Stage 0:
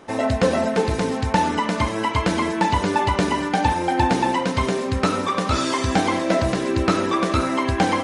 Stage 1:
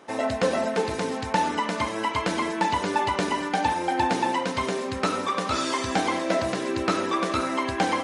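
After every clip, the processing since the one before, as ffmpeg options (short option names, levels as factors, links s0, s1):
-af "highpass=f=290:p=1,volume=0.708"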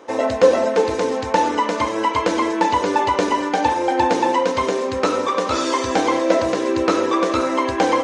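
-af "equalizer=f=160:t=o:w=0.33:g=-12,equalizer=f=315:t=o:w=0.33:g=6,equalizer=f=500:t=o:w=0.33:g=11,equalizer=f=1000:t=o:w=0.33:g=5,equalizer=f=6300:t=o:w=0.33:g=4,equalizer=f=10000:t=o:w=0.33:g=-10,volume=1.41"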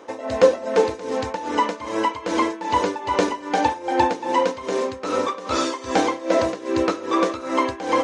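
-af "tremolo=f=2.5:d=0.84"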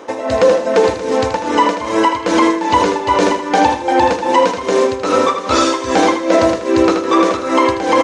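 -af "aecho=1:1:79|158|237|316:0.355|0.117|0.0386|0.0128,alimiter=level_in=3.16:limit=0.891:release=50:level=0:latency=1,volume=0.891"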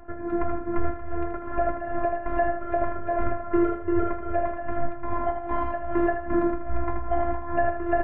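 -af "highpass=f=240:t=q:w=0.5412,highpass=f=240:t=q:w=1.307,lowpass=f=2100:t=q:w=0.5176,lowpass=f=2100:t=q:w=0.7071,lowpass=f=2100:t=q:w=1.932,afreqshift=-390,bandreject=f=60.51:t=h:w=4,bandreject=f=121.02:t=h:w=4,bandreject=f=181.53:t=h:w=4,bandreject=f=242.04:t=h:w=4,bandreject=f=302.55:t=h:w=4,bandreject=f=363.06:t=h:w=4,bandreject=f=423.57:t=h:w=4,bandreject=f=484.08:t=h:w=4,bandreject=f=544.59:t=h:w=4,bandreject=f=605.1:t=h:w=4,bandreject=f=665.61:t=h:w=4,bandreject=f=726.12:t=h:w=4,bandreject=f=786.63:t=h:w=4,bandreject=f=847.14:t=h:w=4,bandreject=f=907.65:t=h:w=4,bandreject=f=968.16:t=h:w=4,bandreject=f=1028.67:t=h:w=4,bandreject=f=1089.18:t=h:w=4,bandreject=f=1149.69:t=h:w=4,bandreject=f=1210.2:t=h:w=4,bandreject=f=1270.71:t=h:w=4,bandreject=f=1331.22:t=h:w=4,bandreject=f=1391.73:t=h:w=4,bandreject=f=1452.24:t=h:w=4,bandreject=f=1512.75:t=h:w=4,bandreject=f=1573.26:t=h:w=4,bandreject=f=1633.77:t=h:w=4,bandreject=f=1694.28:t=h:w=4,bandreject=f=1754.79:t=h:w=4,bandreject=f=1815.3:t=h:w=4,bandreject=f=1875.81:t=h:w=4,bandreject=f=1936.32:t=h:w=4,bandreject=f=1996.83:t=h:w=4,bandreject=f=2057.34:t=h:w=4,bandreject=f=2117.85:t=h:w=4,afftfilt=real='hypot(re,im)*cos(PI*b)':imag='0':win_size=512:overlap=0.75,volume=0.562"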